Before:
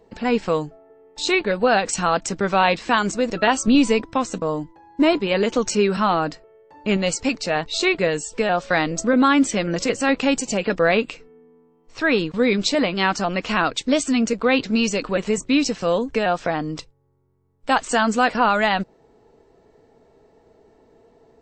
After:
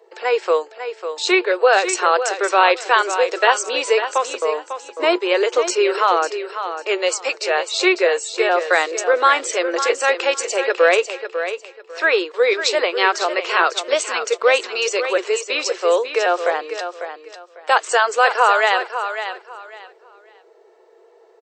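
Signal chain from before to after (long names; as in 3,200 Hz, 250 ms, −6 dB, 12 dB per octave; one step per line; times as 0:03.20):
Chebyshev high-pass with heavy ripple 350 Hz, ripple 3 dB
repeating echo 548 ms, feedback 23%, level −9.5 dB
level +5 dB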